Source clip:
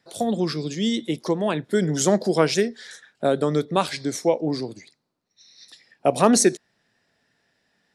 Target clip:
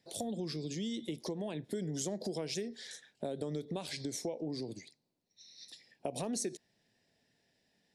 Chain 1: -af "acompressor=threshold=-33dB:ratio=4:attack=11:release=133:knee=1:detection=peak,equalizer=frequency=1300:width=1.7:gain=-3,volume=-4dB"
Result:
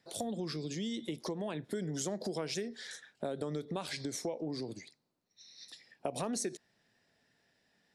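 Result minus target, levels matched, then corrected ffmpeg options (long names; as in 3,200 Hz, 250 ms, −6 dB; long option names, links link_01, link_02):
1,000 Hz band +3.0 dB
-af "acompressor=threshold=-33dB:ratio=4:attack=11:release=133:knee=1:detection=peak,equalizer=frequency=1300:width=1.7:gain=-13.5,volume=-4dB"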